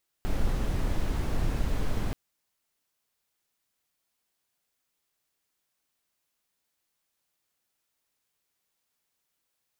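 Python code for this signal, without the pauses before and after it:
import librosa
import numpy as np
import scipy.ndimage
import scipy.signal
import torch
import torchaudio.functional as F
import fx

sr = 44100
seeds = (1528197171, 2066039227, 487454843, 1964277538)

y = fx.noise_colour(sr, seeds[0], length_s=1.88, colour='brown', level_db=-26.0)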